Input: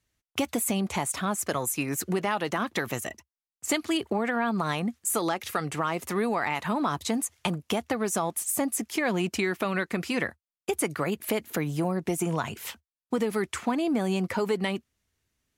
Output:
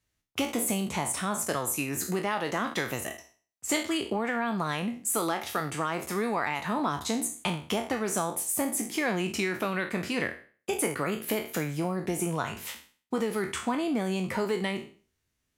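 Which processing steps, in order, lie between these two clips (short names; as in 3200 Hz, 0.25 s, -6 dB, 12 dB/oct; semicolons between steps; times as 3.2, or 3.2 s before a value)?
spectral trails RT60 0.41 s; gain -3 dB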